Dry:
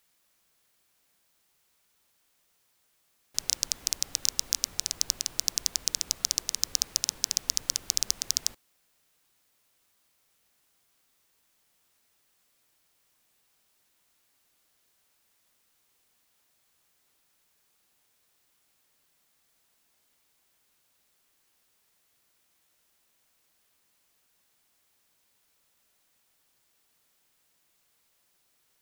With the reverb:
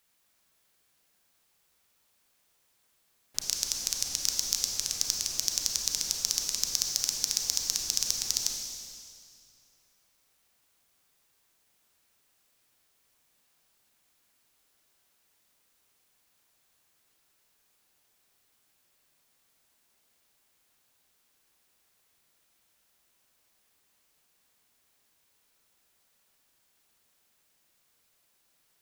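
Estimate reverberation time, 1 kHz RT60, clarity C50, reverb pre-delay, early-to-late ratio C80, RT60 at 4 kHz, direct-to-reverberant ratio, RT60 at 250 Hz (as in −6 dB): 2.3 s, 2.2 s, 3.0 dB, 29 ms, 4.5 dB, 2.2 s, 2.0 dB, 2.5 s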